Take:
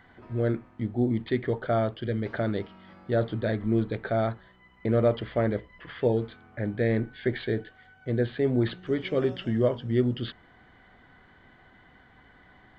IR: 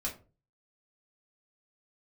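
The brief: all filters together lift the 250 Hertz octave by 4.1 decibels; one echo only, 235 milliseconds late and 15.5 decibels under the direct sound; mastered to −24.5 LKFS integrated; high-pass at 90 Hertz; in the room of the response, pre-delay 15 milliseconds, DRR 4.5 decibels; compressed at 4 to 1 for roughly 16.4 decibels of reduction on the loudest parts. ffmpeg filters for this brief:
-filter_complex "[0:a]highpass=90,equalizer=frequency=250:width_type=o:gain=5,acompressor=threshold=-37dB:ratio=4,aecho=1:1:235:0.168,asplit=2[link_01][link_02];[1:a]atrim=start_sample=2205,adelay=15[link_03];[link_02][link_03]afir=irnorm=-1:irlink=0,volume=-7dB[link_04];[link_01][link_04]amix=inputs=2:normalize=0,volume=14dB"

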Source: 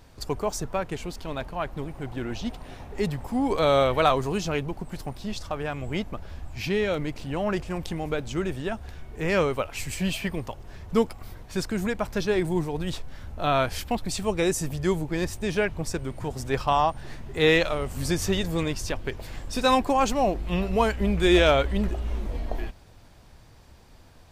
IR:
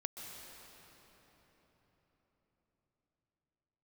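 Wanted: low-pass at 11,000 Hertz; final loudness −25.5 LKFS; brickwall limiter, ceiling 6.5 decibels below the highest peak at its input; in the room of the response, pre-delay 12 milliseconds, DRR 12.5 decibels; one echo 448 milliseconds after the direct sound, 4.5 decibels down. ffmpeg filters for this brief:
-filter_complex "[0:a]lowpass=11000,alimiter=limit=-15dB:level=0:latency=1,aecho=1:1:448:0.596,asplit=2[link_01][link_02];[1:a]atrim=start_sample=2205,adelay=12[link_03];[link_02][link_03]afir=irnorm=-1:irlink=0,volume=-11.5dB[link_04];[link_01][link_04]amix=inputs=2:normalize=0,volume=1.5dB"

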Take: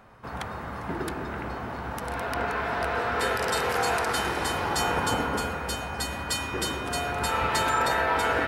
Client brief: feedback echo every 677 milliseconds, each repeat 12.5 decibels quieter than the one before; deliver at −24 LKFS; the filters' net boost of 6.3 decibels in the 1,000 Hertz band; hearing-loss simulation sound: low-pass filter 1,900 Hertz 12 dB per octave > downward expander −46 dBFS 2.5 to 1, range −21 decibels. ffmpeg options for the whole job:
ffmpeg -i in.wav -af "lowpass=1900,equalizer=frequency=1000:width_type=o:gain=8.5,aecho=1:1:677|1354|2031:0.237|0.0569|0.0137,agate=range=-21dB:threshold=-46dB:ratio=2.5" out.wav

